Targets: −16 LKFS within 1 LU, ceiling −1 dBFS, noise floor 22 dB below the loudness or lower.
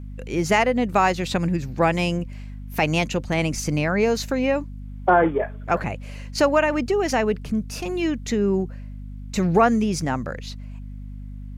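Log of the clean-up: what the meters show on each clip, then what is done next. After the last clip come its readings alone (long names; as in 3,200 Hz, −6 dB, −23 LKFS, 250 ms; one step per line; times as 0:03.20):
mains hum 50 Hz; hum harmonics up to 250 Hz; level of the hum −32 dBFS; integrated loudness −22.5 LKFS; sample peak −6.5 dBFS; target loudness −16.0 LKFS
→ mains-hum notches 50/100/150/200/250 Hz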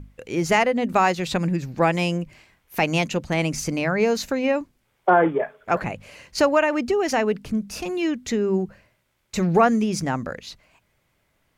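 mains hum none found; integrated loudness −22.5 LKFS; sample peak −6.5 dBFS; target loudness −16.0 LKFS
→ level +6.5 dB
brickwall limiter −1 dBFS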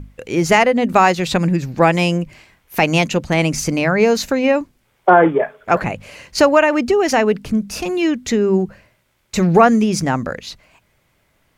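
integrated loudness −16.5 LKFS; sample peak −1.0 dBFS; background noise floor −63 dBFS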